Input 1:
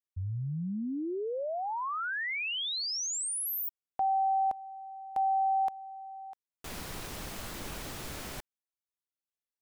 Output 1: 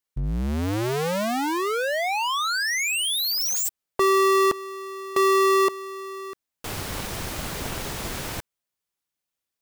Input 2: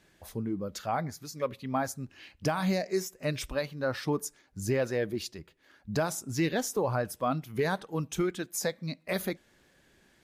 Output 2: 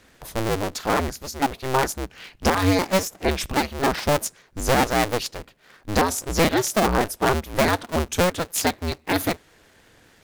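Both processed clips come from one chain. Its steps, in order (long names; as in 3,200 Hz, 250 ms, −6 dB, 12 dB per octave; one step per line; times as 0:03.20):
sub-harmonics by changed cycles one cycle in 2, inverted
level +9 dB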